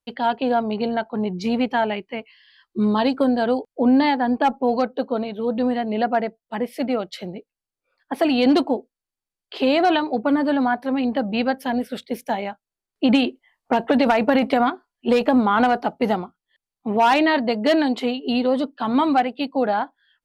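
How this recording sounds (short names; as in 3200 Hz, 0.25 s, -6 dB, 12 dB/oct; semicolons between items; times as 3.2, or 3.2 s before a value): noise floor -89 dBFS; spectral tilt -3.5 dB/oct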